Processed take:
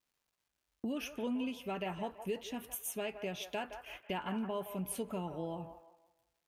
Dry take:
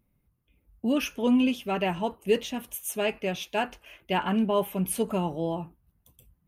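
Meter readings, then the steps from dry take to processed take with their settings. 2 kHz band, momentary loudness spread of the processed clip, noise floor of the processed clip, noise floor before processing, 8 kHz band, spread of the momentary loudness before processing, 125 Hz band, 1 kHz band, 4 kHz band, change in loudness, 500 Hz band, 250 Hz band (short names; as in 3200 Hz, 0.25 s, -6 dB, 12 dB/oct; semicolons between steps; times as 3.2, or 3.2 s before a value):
-11.0 dB, 6 LU, under -85 dBFS, -72 dBFS, -8.0 dB, 9 LU, -11.0 dB, -11.0 dB, -10.5 dB, -11.5 dB, -11.5 dB, -12.5 dB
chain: gate -51 dBFS, range -33 dB; compressor 3:1, threshold -44 dBFS, peak gain reduction 19 dB; crackle 460/s -72 dBFS; on a send: band-limited delay 0.167 s, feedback 34%, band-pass 1000 Hz, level -8 dB; on the sum: gain +3 dB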